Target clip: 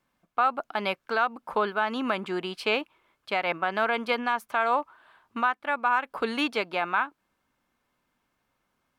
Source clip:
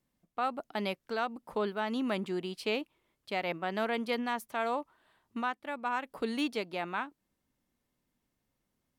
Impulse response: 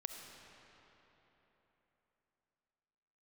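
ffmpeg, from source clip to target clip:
-af "equalizer=f=1.4k:t=o:w=2.5:g=14.5,bandreject=f=1.9k:w=8.5,alimiter=limit=-13.5dB:level=0:latency=1:release=214"

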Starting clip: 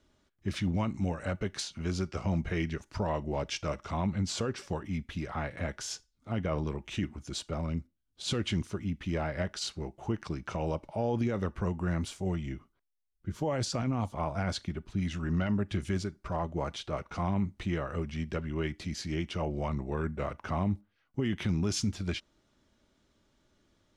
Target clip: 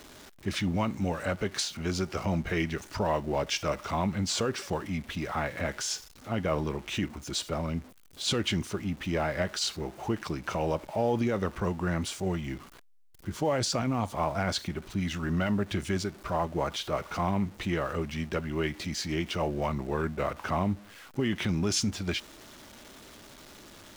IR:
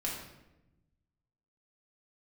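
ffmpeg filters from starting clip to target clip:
-af "aeval=exprs='val(0)+0.5*0.00398*sgn(val(0))':c=same,lowshelf=f=200:g=-8,volume=5dB"

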